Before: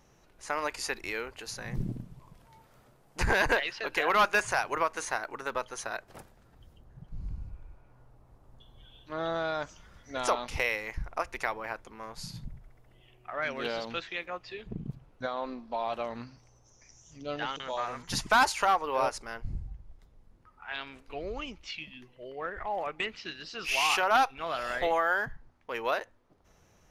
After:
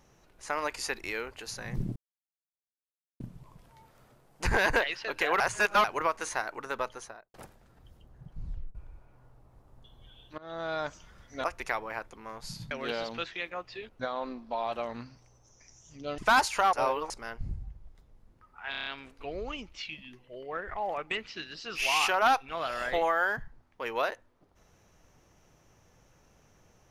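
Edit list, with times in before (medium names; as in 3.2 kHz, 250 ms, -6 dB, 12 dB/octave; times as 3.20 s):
1.96 s: insert silence 1.24 s
4.16–4.60 s: reverse
5.61–6.10 s: studio fade out
7.21 s: tape stop 0.30 s
9.14–9.55 s: fade in, from -23.5 dB
10.20–11.18 s: delete
12.45–13.47 s: delete
14.65–15.10 s: delete
17.39–18.22 s: delete
18.77–19.14 s: reverse
20.75 s: stutter 0.03 s, 6 plays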